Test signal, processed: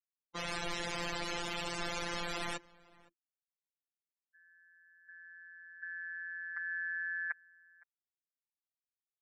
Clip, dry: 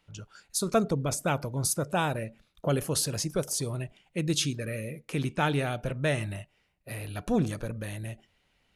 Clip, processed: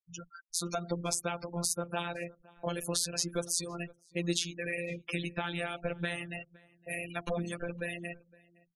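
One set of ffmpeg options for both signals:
ffmpeg -i in.wav -filter_complex "[0:a]bandreject=frequency=60:width_type=h:width=6,bandreject=frequency=120:width_type=h:width=6,bandreject=frequency=180:width_type=h:width=6,bandreject=frequency=240:width_type=h:width=6,bandreject=frequency=300:width_type=h:width=6,bandreject=frequency=360:width_type=h:width=6,afftfilt=real='re*gte(hypot(re,im),0.01)':imag='im*gte(hypot(re,im),0.01)':win_size=1024:overlap=0.75,lowpass=10000,lowshelf=frequency=300:gain=-8,asplit=2[link_01][link_02];[link_02]acompressor=threshold=-36dB:ratio=6,volume=3dB[link_03];[link_01][link_03]amix=inputs=2:normalize=0,alimiter=limit=-20.5dB:level=0:latency=1:release=265,afftfilt=real='hypot(re,im)*cos(PI*b)':imag='0':win_size=1024:overlap=0.75,asplit=2[link_04][link_05];[link_05]adelay=513.1,volume=-23dB,highshelf=frequency=4000:gain=-11.5[link_06];[link_04][link_06]amix=inputs=2:normalize=0,adynamicequalizer=threshold=0.00398:dfrequency=1700:dqfactor=0.7:tfrequency=1700:tqfactor=0.7:attack=5:release=100:ratio=0.375:range=2:mode=boostabove:tftype=highshelf" out.wav

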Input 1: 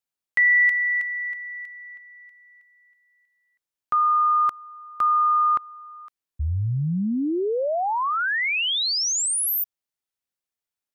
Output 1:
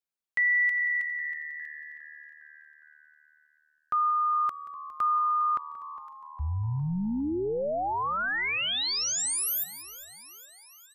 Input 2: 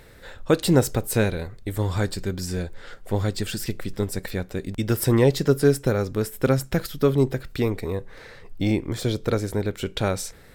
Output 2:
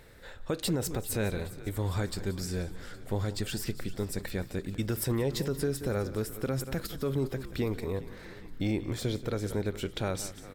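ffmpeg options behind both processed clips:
ffmpeg -i in.wav -filter_complex "[0:a]asplit=2[link_01][link_02];[link_02]aecho=0:1:180:0.141[link_03];[link_01][link_03]amix=inputs=2:normalize=0,alimiter=limit=-15dB:level=0:latency=1:release=77,asplit=2[link_04][link_05];[link_05]asplit=6[link_06][link_07][link_08][link_09][link_10][link_11];[link_06]adelay=408,afreqshift=-76,volume=-17dB[link_12];[link_07]adelay=816,afreqshift=-152,volume=-21.3dB[link_13];[link_08]adelay=1224,afreqshift=-228,volume=-25.6dB[link_14];[link_09]adelay=1632,afreqshift=-304,volume=-29.9dB[link_15];[link_10]adelay=2040,afreqshift=-380,volume=-34.2dB[link_16];[link_11]adelay=2448,afreqshift=-456,volume=-38.5dB[link_17];[link_12][link_13][link_14][link_15][link_16][link_17]amix=inputs=6:normalize=0[link_18];[link_04][link_18]amix=inputs=2:normalize=0,volume=-5.5dB" out.wav

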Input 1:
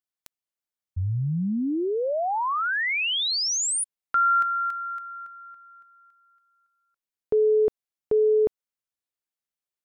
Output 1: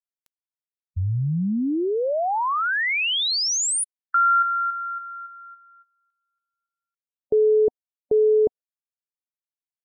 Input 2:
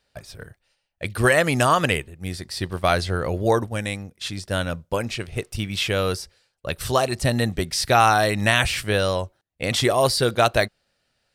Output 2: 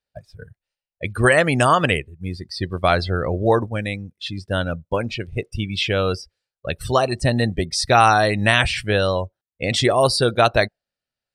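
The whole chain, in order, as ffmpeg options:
ffmpeg -i in.wav -af "afftdn=noise_reduction=20:noise_floor=-32,volume=2.5dB" out.wav

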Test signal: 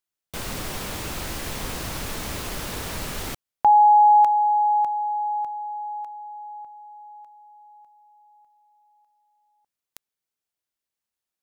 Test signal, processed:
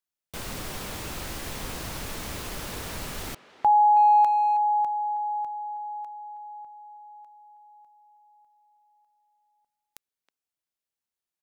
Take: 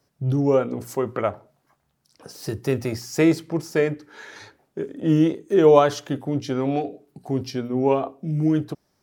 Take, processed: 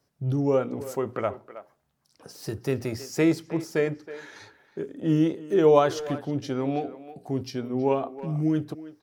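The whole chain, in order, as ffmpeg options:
ffmpeg -i in.wav -filter_complex "[0:a]asplit=2[link_01][link_02];[link_02]adelay=320,highpass=300,lowpass=3400,asoftclip=type=hard:threshold=-12dB,volume=-14dB[link_03];[link_01][link_03]amix=inputs=2:normalize=0,volume=-4dB" out.wav

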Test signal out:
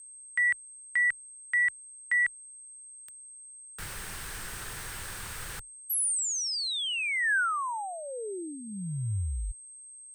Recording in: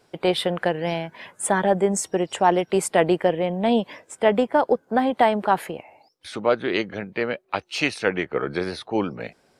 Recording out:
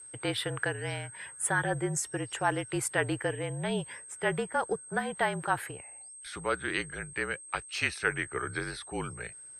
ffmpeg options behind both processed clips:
ffmpeg -i in.wav -af "aeval=exprs='val(0)+0.00891*sin(2*PI*8400*n/s)':channel_layout=same,afreqshift=-41,equalizer=frequency=100:width_type=o:width=0.67:gain=4,equalizer=frequency=250:width_type=o:width=0.67:gain=-10,equalizer=frequency=630:width_type=o:width=0.67:gain=-7,equalizer=frequency=1600:width_type=o:width=0.67:gain=8,equalizer=frequency=10000:width_type=o:width=0.67:gain=5,volume=-8dB" out.wav

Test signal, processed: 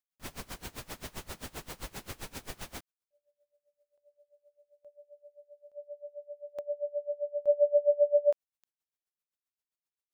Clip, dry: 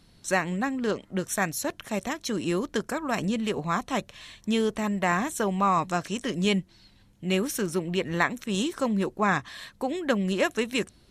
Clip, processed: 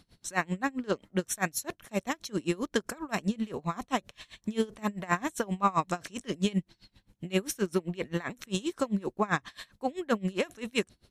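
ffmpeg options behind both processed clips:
ffmpeg -i in.wav -af "aeval=exprs='val(0)*pow(10,-25*(0.5-0.5*cos(2*PI*7.6*n/s))/20)':channel_layout=same,volume=1.5dB" out.wav

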